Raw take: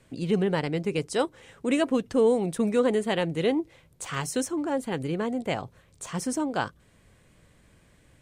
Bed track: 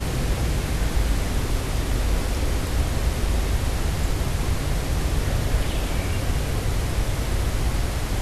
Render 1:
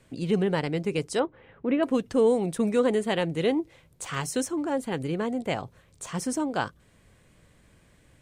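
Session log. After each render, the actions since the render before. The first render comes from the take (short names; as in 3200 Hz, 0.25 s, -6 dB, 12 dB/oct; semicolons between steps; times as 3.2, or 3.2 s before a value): 1.19–1.83 Gaussian blur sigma 3.4 samples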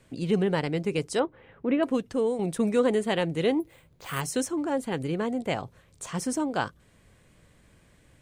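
1.78–2.39 fade out, to -7.5 dB; 3.6–4.21 careless resampling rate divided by 4×, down filtered, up hold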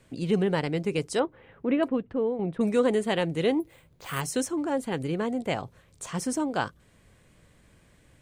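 1.88–2.61 air absorption 490 m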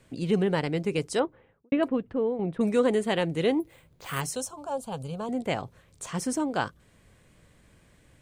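1.18–1.72 studio fade out; 4.35–5.29 fixed phaser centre 800 Hz, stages 4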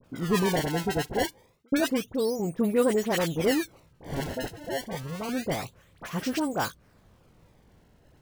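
decimation with a swept rate 21×, swing 160% 0.28 Hz; dispersion highs, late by 42 ms, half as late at 1600 Hz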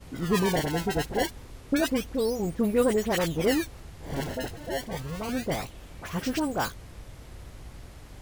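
add bed track -21 dB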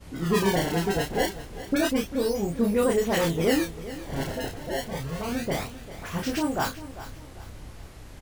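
doubler 30 ms -3.5 dB; feedback echo 0.397 s, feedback 37%, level -15 dB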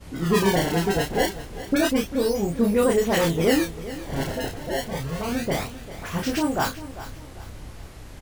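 gain +3 dB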